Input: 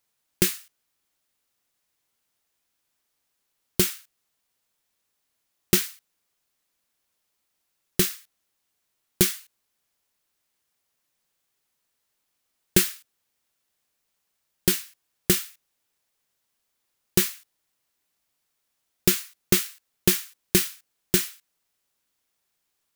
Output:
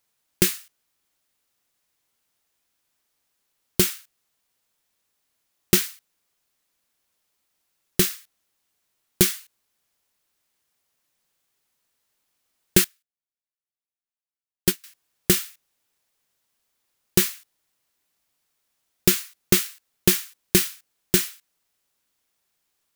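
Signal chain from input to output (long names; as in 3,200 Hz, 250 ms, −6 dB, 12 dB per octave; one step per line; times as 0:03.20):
0:12.84–0:14.84: expander for the loud parts 2.5 to 1, over −33 dBFS
level +2 dB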